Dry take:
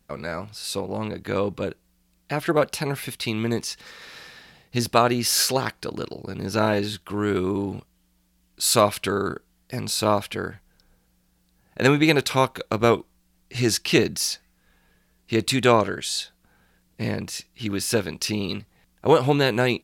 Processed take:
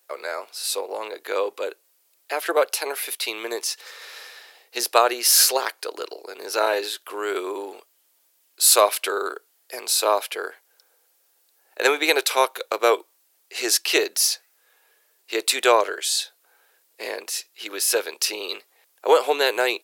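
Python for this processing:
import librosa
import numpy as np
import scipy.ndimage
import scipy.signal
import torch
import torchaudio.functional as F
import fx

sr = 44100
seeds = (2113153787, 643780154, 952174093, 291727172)

y = scipy.signal.sosfilt(scipy.signal.butter(6, 400.0, 'highpass', fs=sr, output='sos'), x)
y = fx.high_shelf(y, sr, hz=9400.0, db=11.5)
y = F.gain(torch.from_numpy(y), 1.5).numpy()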